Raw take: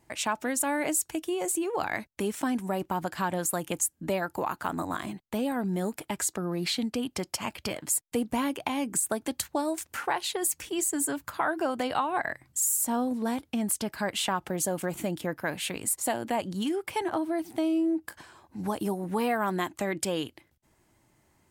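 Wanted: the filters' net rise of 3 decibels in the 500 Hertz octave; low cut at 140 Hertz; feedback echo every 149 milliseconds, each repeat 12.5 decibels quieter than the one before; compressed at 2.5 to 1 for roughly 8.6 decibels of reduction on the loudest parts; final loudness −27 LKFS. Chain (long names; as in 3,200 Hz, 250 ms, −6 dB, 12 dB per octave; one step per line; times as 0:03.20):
high-pass filter 140 Hz
parametric band 500 Hz +4 dB
downward compressor 2.5 to 1, threshold −35 dBFS
repeating echo 149 ms, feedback 24%, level −12.5 dB
level +8.5 dB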